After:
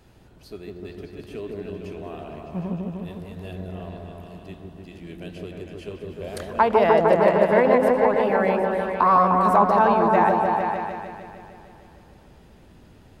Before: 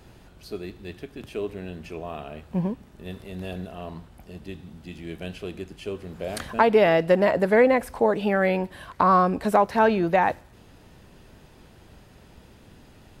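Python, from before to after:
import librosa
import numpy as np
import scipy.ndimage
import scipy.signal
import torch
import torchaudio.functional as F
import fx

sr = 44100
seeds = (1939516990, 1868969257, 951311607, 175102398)

y = fx.echo_opening(x, sr, ms=152, hz=750, octaves=1, feedback_pct=70, wet_db=0)
y = fx.dynamic_eq(y, sr, hz=970.0, q=1.3, threshold_db=-32.0, ratio=4.0, max_db=7)
y = y * librosa.db_to_amplitude(-4.5)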